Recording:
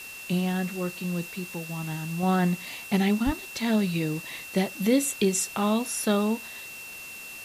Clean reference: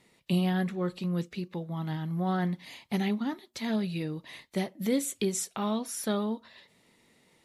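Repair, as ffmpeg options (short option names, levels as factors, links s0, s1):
-filter_complex "[0:a]bandreject=f=2700:w=30,asplit=3[s0][s1][s2];[s0]afade=t=out:st=3.25:d=0.02[s3];[s1]highpass=f=140:w=0.5412,highpass=f=140:w=1.3066,afade=t=in:st=3.25:d=0.02,afade=t=out:st=3.37:d=0.02[s4];[s2]afade=t=in:st=3.37:d=0.02[s5];[s3][s4][s5]amix=inputs=3:normalize=0,afwtdn=0.0063,asetnsamples=n=441:p=0,asendcmd='2.23 volume volume -5.5dB',volume=1"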